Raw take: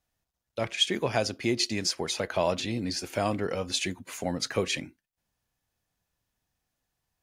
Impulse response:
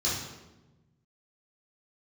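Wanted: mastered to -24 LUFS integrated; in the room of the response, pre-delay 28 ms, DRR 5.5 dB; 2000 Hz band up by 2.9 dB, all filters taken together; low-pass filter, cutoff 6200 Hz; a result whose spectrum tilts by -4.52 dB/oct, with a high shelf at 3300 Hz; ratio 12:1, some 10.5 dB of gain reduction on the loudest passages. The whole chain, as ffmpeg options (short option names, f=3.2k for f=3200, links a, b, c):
-filter_complex "[0:a]lowpass=6.2k,equalizer=f=2k:t=o:g=6.5,highshelf=f=3.3k:g=-8,acompressor=threshold=-31dB:ratio=12,asplit=2[a][b];[1:a]atrim=start_sample=2205,adelay=28[c];[b][c]afir=irnorm=-1:irlink=0,volume=-14dB[d];[a][d]amix=inputs=2:normalize=0,volume=11dB"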